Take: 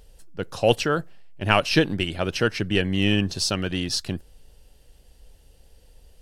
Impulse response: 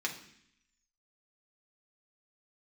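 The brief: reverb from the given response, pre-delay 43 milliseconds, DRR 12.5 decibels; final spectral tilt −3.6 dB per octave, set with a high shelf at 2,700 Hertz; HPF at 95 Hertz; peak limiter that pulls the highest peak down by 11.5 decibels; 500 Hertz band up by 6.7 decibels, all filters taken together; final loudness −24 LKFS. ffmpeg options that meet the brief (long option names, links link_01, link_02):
-filter_complex "[0:a]highpass=95,equalizer=frequency=500:width_type=o:gain=7.5,highshelf=frequency=2700:gain=6.5,alimiter=limit=-9dB:level=0:latency=1,asplit=2[link_01][link_02];[1:a]atrim=start_sample=2205,adelay=43[link_03];[link_02][link_03]afir=irnorm=-1:irlink=0,volume=-17dB[link_04];[link_01][link_04]amix=inputs=2:normalize=0,volume=-1.5dB"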